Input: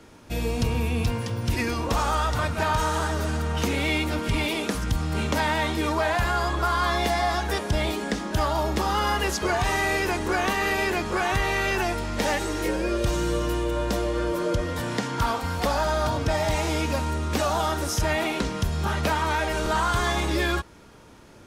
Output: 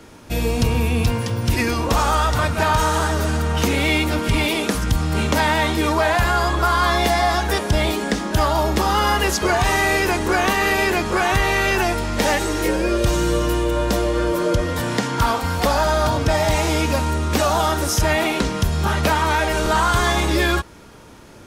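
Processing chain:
high-shelf EQ 11,000 Hz +4.5 dB
level +6 dB

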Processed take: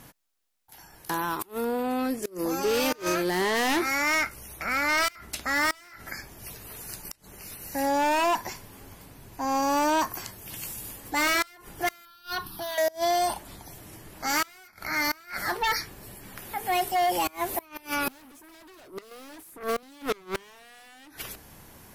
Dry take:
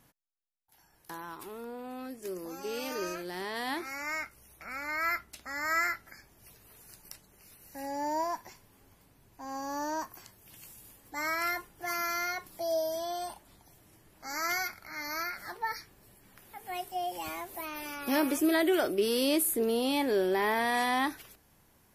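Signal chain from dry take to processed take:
0:01.17–0:01.83: high-shelf EQ 11,000 Hz +7 dB
in parallel at −7.5 dB: sine wavefolder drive 16 dB, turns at −16 dBFS
on the sum: gate with flip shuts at −20 dBFS, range −27 dB
0:12.05–0:12.78: phaser with its sweep stopped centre 2,100 Hz, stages 6
0:19.11–0:19.83: multiband upward and downward compressor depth 40%

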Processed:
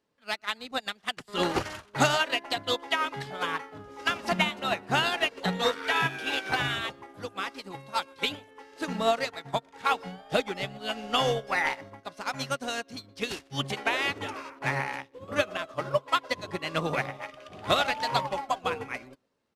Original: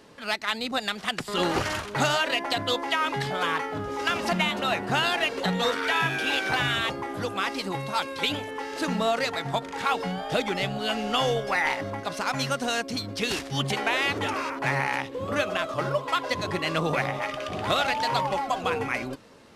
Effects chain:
far-end echo of a speakerphone 120 ms, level −17 dB
expander for the loud parts 2.5 to 1, over −40 dBFS
level +3 dB

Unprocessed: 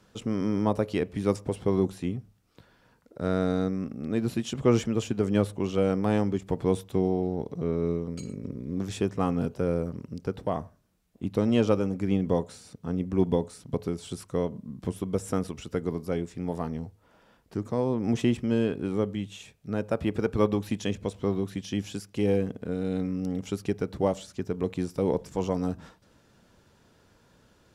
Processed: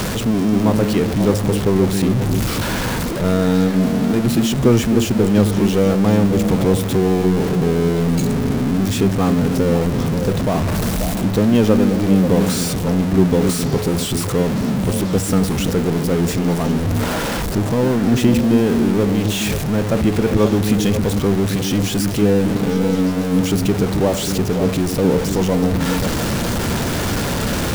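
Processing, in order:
converter with a step at zero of −23.5 dBFS
reversed playback
upward compression, threshold −24 dBFS
reversed playback
low-shelf EQ 370 Hz +5.5 dB
echo through a band-pass that steps 267 ms, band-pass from 240 Hz, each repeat 1.4 octaves, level −3 dB
level +3 dB

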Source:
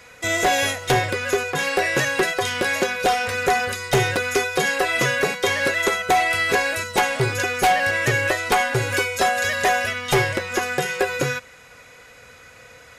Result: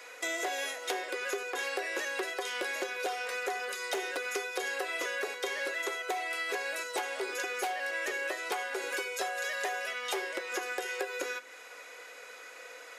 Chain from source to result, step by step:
Butterworth high-pass 320 Hz 36 dB per octave
downward compressor 4 to 1, threshold −32 dBFS, peak gain reduction 15.5 dB
on a send: convolution reverb RT60 0.65 s, pre-delay 10 ms, DRR 15.5 dB
on the sum: level −2 dB

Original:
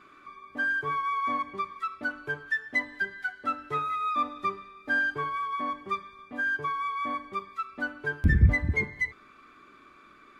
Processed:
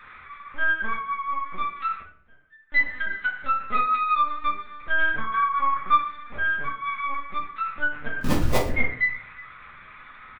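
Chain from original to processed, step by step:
far-end echo of a speakerphone 360 ms, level −22 dB
noise in a band 1,000–2,200 Hz −54 dBFS
spectral tilt +2.5 dB per octave
0:01.95–0:02.72: gate with flip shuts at −36 dBFS, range −28 dB
linear-prediction vocoder at 8 kHz pitch kept
0:05.24–0:06.02: parametric band 1,300 Hz +9.5 dB 0.82 octaves
0:08.21–0:08.69: sample-rate reduction 1,500 Hz, jitter 20%
convolution reverb RT60 0.55 s, pre-delay 4 ms, DRR −2 dB

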